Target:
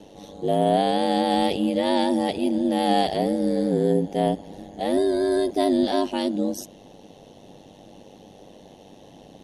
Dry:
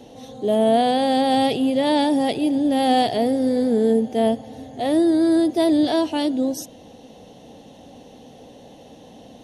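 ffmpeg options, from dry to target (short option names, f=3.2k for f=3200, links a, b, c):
-filter_complex "[0:a]aeval=exprs='val(0)*sin(2*PI*49*n/s)':c=same,asettb=1/sr,asplit=3[a][b][c];[a]atrim=end=4.974[d];[b]atrim=start=4.97:end=5.51,asetpts=PTS-STARTPTS,afade=t=in:d=0.004:c=qsin,afade=t=out:st=0.536:d=0.004:c=qsin,aecho=1:1:1.9:0.66,atrim=end_sample=23814[e];[c]atrim=start=5.506[f];[d][e]acrossfade=d=0.004:c1=hsin:c2=qsin[g];[g][f]acrossfade=d=0.004:c1=qsin:c2=hsin"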